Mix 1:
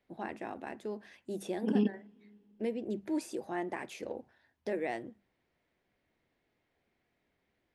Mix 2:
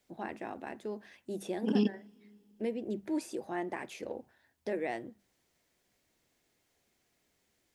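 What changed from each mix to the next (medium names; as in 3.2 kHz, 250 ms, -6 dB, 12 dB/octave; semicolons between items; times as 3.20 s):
second voice: remove distance through air 330 m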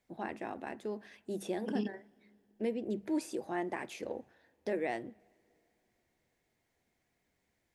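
first voice: send on; second voice -8.5 dB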